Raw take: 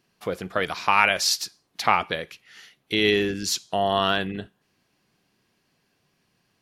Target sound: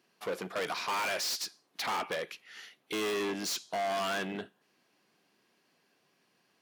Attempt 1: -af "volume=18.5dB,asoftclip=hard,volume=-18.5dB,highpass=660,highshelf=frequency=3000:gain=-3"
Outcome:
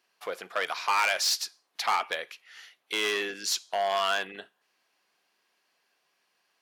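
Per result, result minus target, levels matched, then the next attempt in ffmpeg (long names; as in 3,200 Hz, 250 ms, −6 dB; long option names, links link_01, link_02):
250 Hz band −12.0 dB; gain into a clipping stage and back: distortion −6 dB
-af "volume=18.5dB,asoftclip=hard,volume=-18.5dB,highpass=260,highshelf=frequency=3000:gain=-3"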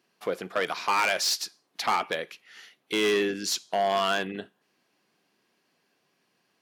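gain into a clipping stage and back: distortion −6 dB
-af "volume=29.5dB,asoftclip=hard,volume=-29.5dB,highpass=260,highshelf=frequency=3000:gain=-3"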